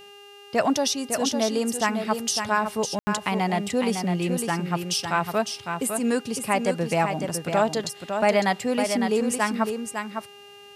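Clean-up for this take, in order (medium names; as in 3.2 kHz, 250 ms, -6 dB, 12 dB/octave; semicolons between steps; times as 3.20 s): de-hum 405.4 Hz, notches 38; band-stop 2.8 kHz, Q 30; room tone fill 2.99–3.07 s; inverse comb 555 ms -6.5 dB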